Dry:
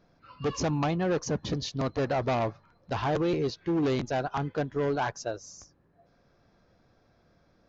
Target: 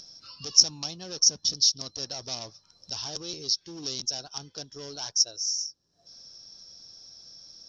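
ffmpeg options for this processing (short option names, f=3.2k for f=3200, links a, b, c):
-af "aexciter=amount=8.6:drive=4:freq=3.1k,lowpass=f=5.5k:t=q:w=16,acompressor=mode=upward:threshold=-21dB:ratio=2.5,volume=-15.5dB"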